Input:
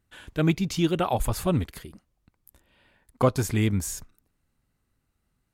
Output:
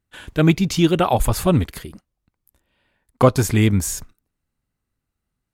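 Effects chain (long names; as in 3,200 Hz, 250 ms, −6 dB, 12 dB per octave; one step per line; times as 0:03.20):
noise gate −49 dBFS, range −12 dB
level +7.5 dB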